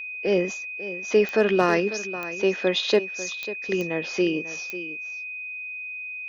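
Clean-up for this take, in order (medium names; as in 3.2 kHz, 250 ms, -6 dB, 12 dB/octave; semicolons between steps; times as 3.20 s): clip repair -9 dBFS; de-click; band-stop 2.5 kHz, Q 30; inverse comb 545 ms -14 dB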